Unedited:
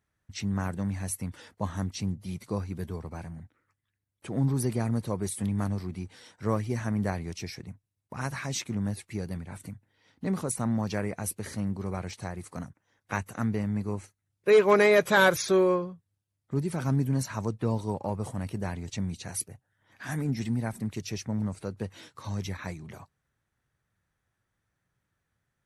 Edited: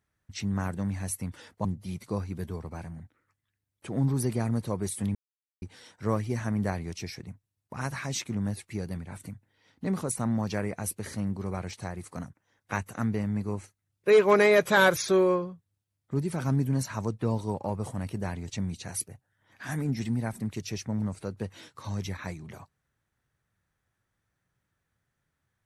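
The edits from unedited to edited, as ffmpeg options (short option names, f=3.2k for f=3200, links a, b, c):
-filter_complex "[0:a]asplit=4[a][b][c][d];[a]atrim=end=1.652[e];[b]atrim=start=2.048:end=5.55,asetpts=PTS-STARTPTS,afade=t=out:st=3.498:d=0.004:c=hsin[f];[c]atrim=start=5.55:end=6.02,asetpts=PTS-STARTPTS,volume=0[g];[d]atrim=start=6.02,asetpts=PTS-STARTPTS,afade=t=in:d=0.004:c=hsin[h];[f][g][h]concat=n=3:v=0:a=1[i];[e][i]acrossfade=d=0.004:c1=hsin:c2=hsin"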